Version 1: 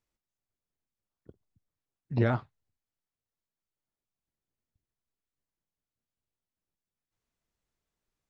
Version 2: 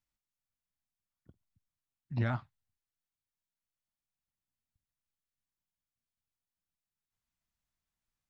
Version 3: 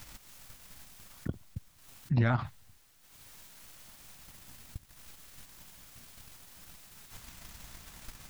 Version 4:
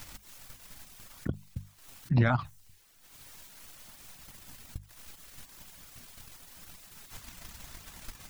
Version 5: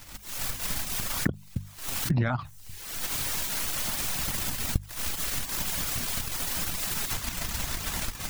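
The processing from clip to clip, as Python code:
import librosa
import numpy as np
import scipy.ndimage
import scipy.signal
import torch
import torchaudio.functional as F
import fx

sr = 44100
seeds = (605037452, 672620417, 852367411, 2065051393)

y1 = fx.peak_eq(x, sr, hz=430.0, db=-14.0, octaves=0.8)
y1 = y1 * librosa.db_to_amplitude(-3.5)
y2 = fx.transient(y1, sr, attack_db=7, sustain_db=-11)
y2 = fx.env_flatten(y2, sr, amount_pct=70)
y3 = fx.dereverb_blind(y2, sr, rt60_s=0.53)
y3 = fx.hum_notches(y3, sr, base_hz=50, count=4)
y3 = fx.dmg_crackle(y3, sr, seeds[0], per_s=49.0, level_db=-54.0)
y3 = y3 * librosa.db_to_amplitude(3.5)
y4 = fx.recorder_agc(y3, sr, target_db=-18.5, rise_db_per_s=51.0, max_gain_db=30)
y4 = y4 * librosa.db_to_amplitude(-2.0)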